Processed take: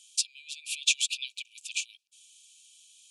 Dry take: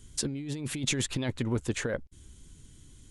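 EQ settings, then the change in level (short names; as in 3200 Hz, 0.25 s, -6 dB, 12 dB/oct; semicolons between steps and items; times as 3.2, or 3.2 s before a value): brick-wall FIR high-pass 2300 Hz; high shelf 10000 Hz -11.5 dB; +8.0 dB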